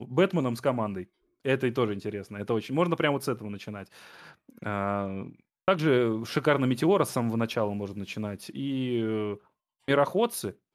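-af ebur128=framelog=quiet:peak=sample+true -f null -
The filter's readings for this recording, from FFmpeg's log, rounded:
Integrated loudness:
  I:         -28.2 LUFS
  Threshold: -38.9 LUFS
Loudness range:
  LRA:         4.1 LU
  Threshold: -49.0 LUFS
  LRA low:   -31.2 LUFS
  LRA high:  -27.1 LUFS
Sample peak:
  Peak:       -9.9 dBFS
True peak:
  Peak:       -9.8 dBFS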